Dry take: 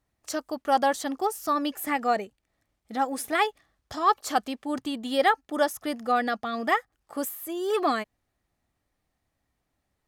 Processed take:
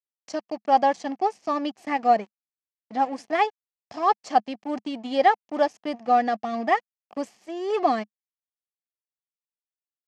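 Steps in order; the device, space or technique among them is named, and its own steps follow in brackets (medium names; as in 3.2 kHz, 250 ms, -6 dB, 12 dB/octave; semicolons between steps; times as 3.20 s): blown loudspeaker (crossover distortion -40.5 dBFS; cabinet simulation 140–5800 Hz, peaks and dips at 210 Hz +7 dB, 730 Hz +7 dB, 1.4 kHz -9 dB, 3.7 kHz -9 dB); trim +1.5 dB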